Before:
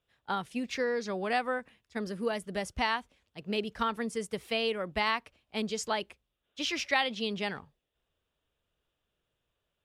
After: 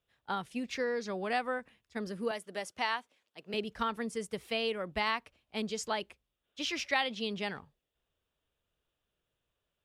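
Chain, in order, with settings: 2.31–3.54 s: Bessel high-pass 380 Hz, order 2; trim -2.5 dB

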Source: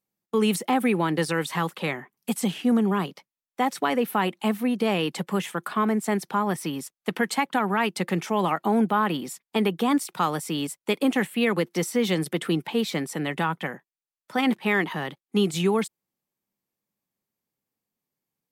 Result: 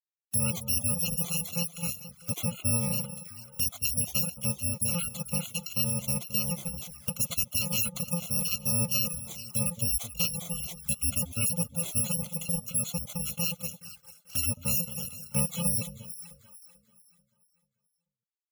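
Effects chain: bit-reversed sample order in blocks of 128 samples; reverb removal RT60 0.51 s; spectral gate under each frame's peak -20 dB strong; peaking EQ 1.4 kHz +2.5 dB 0.78 oct; bit crusher 11-bit; echo whose repeats swap between lows and highs 219 ms, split 1.1 kHz, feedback 59%, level -11 dB; touch-sensitive flanger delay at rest 6.1 ms, full sweep at -31 dBFS

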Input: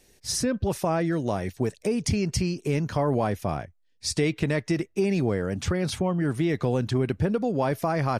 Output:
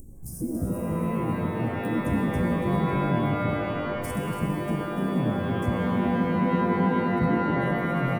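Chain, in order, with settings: local Wiener filter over 9 samples; de-esser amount 80%; elliptic band-stop 230–9500 Hz, stop band 50 dB; peaking EQ 4.7 kHz +7 dB 0.63 oct; hum notches 50/100/150/200/250/300 Hz; upward compressor, threshold -32 dBFS; harmony voices +5 st -3 dB, +12 st -17 dB; delay 285 ms -9.5 dB; spectral freeze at 5.83 s, 1.30 s; pitch-shifted reverb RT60 3.4 s, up +12 st, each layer -2 dB, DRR 3.5 dB

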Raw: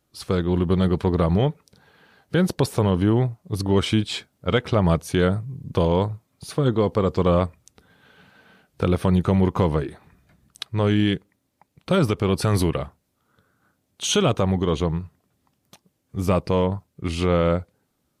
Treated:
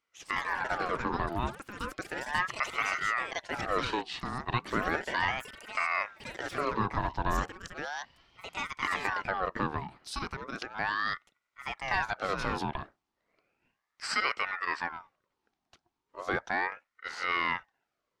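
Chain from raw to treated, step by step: three-band isolator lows -17 dB, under 210 Hz, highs -23 dB, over 6.2 kHz; ever faster or slower copies 148 ms, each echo +6 st, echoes 3, each echo -6 dB; ring modulator with a swept carrier 1.1 kHz, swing 55%, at 0.35 Hz; trim -6 dB

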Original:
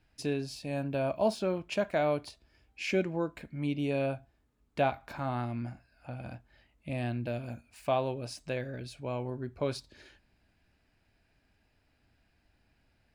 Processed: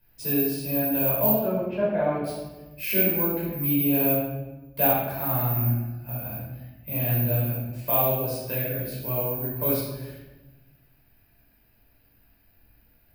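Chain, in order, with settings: careless resampling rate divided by 3×, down filtered, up zero stuff; 1.28–2.24 s: low-pass 1.6 kHz 12 dB/octave; simulated room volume 550 m³, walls mixed, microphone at 5.1 m; trim -7 dB

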